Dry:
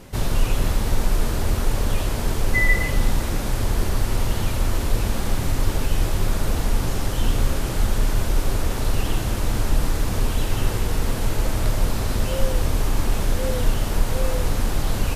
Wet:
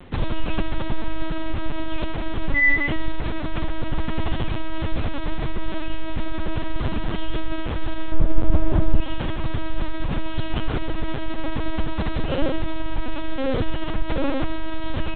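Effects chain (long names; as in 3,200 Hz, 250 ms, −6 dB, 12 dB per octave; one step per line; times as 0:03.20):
0:08.12–0:09.00: tilt shelving filter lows +9 dB, about 1,200 Hz
linear-prediction vocoder at 8 kHz pitch kept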